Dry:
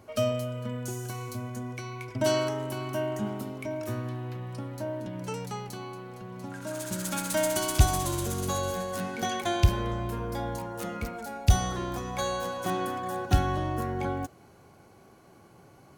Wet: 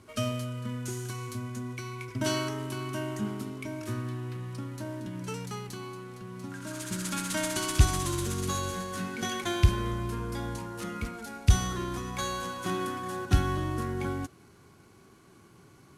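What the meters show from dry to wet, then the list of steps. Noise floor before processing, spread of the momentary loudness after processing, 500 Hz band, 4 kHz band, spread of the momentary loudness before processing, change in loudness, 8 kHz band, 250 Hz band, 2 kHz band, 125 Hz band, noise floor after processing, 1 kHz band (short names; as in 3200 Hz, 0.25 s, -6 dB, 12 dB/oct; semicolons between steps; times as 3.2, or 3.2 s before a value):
-55 dBFS, 12 LU, -5.5 dB, 0.0 dB, 12 LU, -1.5 dB, -0.5 dB, 0.0 dB, 0.0 dB, 0.0 dB, -56 dBFS, -3.5 dB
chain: CVSD 64 kbps; band shelf 650 Hz -8.5 dB 1 oct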